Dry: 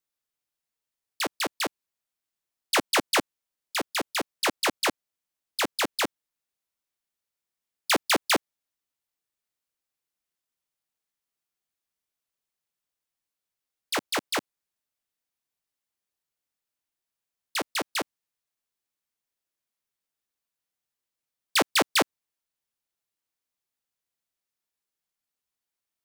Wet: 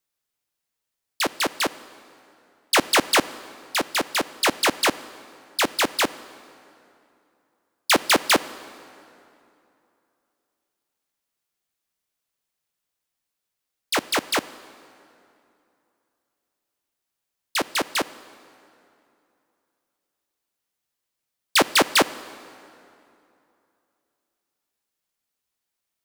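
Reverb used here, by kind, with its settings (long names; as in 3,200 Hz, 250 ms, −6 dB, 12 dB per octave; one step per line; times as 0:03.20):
dense smooth reverb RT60 2.8 s, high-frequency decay 0.7×, DRR 16.5 dB
level +5 dB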